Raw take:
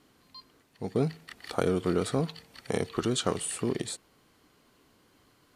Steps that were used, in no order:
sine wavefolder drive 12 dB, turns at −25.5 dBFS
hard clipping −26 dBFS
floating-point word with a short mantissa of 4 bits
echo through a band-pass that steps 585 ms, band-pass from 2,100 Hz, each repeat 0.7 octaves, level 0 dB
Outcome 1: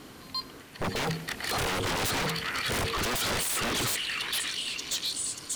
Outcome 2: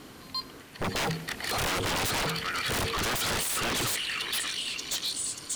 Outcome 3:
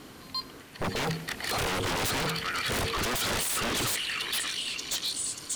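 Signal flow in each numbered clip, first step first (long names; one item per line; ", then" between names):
hard clipping, then echo through a band-pass that steps, then floating-point word with a short mantissa, then sine wavefolder
echo through a band-pass that steps, then floating-point word with a short mantissa, then sine wavefolder, then hard clipping
floating-point word with a short mantissa, then echo through a band-pass that steps, then hard clipping, then sine wavefolder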